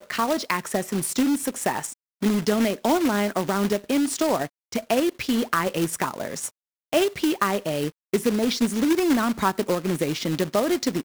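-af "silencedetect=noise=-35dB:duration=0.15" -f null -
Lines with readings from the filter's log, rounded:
silence_start: 1.93
silence_end: 2.22 | silence_duration: 0.29
silence_start: 4.47
silence_end: 4.72 | silence_duration: 0.26
silence_start: 6.48
silence_end: 6.93 | silence_duration: 0.44
silence_start: 7.90
silence_end: 8.13 | silence_duration: 0.24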